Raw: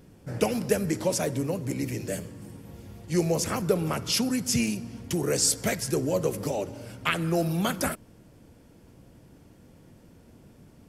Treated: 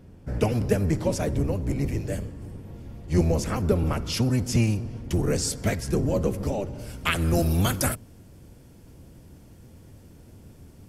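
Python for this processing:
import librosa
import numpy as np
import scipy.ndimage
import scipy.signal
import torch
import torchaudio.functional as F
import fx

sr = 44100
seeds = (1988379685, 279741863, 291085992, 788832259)

y = fx.octave_divider(x, sr, octaves=1, level_db=4.0)
y = fx.high_shelf(y, sr, hz=4300.0, db=fx.steps((0.0, -7.5), (6.78, 6.5)))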